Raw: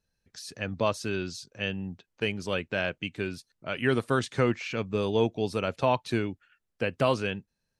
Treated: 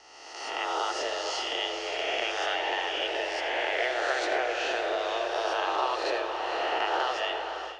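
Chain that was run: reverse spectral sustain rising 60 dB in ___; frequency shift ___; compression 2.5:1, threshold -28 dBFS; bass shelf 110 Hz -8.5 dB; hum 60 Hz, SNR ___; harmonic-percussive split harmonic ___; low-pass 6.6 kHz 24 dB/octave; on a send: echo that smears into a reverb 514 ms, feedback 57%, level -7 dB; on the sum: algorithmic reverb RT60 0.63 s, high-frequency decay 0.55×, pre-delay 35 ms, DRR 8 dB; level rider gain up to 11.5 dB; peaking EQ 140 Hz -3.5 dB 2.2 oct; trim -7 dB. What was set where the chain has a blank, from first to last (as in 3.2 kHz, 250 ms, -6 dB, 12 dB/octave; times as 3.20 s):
1.96 s, +240 Hz, 33 dB, -9 dB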